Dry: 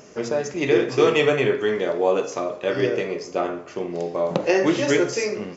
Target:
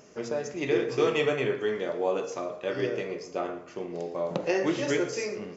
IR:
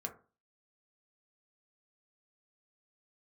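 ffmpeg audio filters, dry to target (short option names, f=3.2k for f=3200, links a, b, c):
-filter_complex "[0:a]asplit=2[a][b];[1:a]atrim=start_sample=2205,adelay=115[c];[b][c]afir=irnorm=-1:irlink=0,volume=-15.5dB[d];[a][d]amix=inputs=2:normalize=0,volume=-7.5dB"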